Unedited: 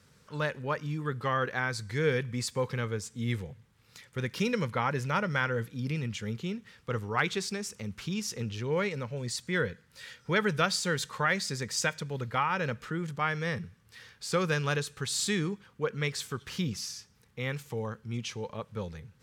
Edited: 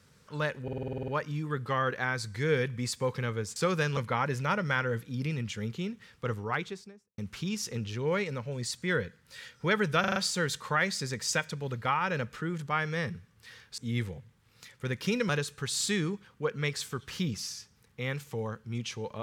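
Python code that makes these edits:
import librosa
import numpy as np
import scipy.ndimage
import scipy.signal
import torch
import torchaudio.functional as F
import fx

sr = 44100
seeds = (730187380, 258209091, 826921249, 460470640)

y = fx.studio_fade_out(x, sr, start_s=6.9, length_s=0.93)
y = fx.edit(y, sr, fx.stutter(start_s=0.63, slice_s=0.05, count=10),
    fx.swap(start_s=3.11, length_s=1.51, other_s=14.27, other_length_s=0.41),
    fx.stutter(start_s=10.65, slice_s=0.04, count=5), tone=tone)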